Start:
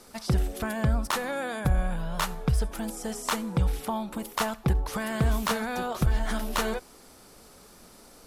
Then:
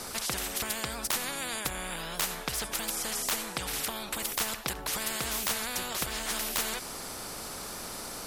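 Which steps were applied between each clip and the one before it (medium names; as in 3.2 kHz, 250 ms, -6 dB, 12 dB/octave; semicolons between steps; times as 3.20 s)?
spectrum-flattening compressor 4:1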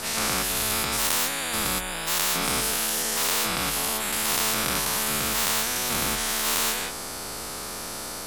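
every event in the spectrogram widened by 240 ms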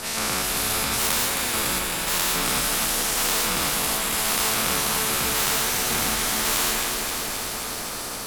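bit-crushed delay 265 ms, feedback 80%, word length 8-bit, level -5.5 dB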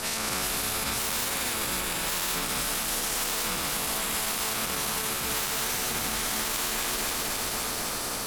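peak limiter -19.5 dBFS, peak gain reduction 11 dB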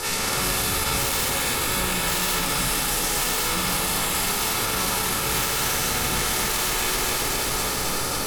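simulated room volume 3200 m³, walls furnished, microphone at 4.2 m; trim +2 dB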